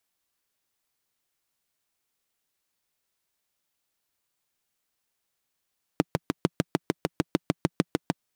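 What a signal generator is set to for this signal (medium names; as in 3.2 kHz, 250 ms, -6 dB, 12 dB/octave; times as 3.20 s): single-cylinder engine model, steady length 2.13 s, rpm 800, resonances 170/300 Hz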